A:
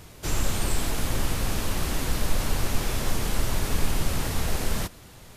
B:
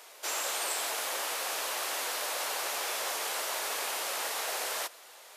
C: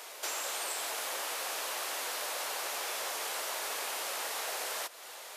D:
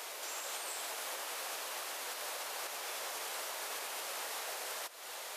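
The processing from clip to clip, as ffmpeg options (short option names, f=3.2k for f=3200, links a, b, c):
-af "highpass=f=530:w=0.5412,highpass=f=530:w=1.3066"
-af "acompressor=threshold=-42dB:ratio=3,volume=5.5dB"
-af "alimiter=level_in=9dB:limit=-24dB:level=0:latency=1:release=355,volume=-9dB,volume=2dB"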